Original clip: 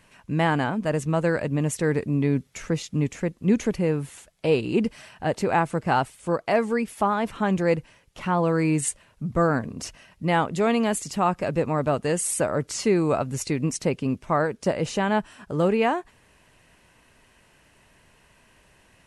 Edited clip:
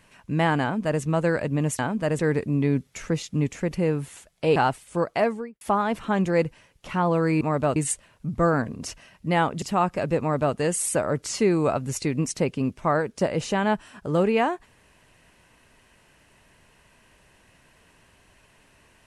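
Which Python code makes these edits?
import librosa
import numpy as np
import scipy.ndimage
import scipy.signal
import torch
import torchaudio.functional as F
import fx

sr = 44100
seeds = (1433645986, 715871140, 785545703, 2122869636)

y = fx.studio_fade_out(x, sr, start_s=6.48, length_s=0.45)
y = fx.edit(y, sr, fx.duplicate(start_s=0.62, length_s=0.4, to_s=1.79),
    fx.cut(start_s=3.31, length_s=0.41),
    fx.cut(start_s=4.57, length_s=1.31),
    fx.cut(start_s=10.59, length_s=0.48),
    fx.duplicate(start_s=11.65, length_s=0.35, to_s=8.73), tone=tone)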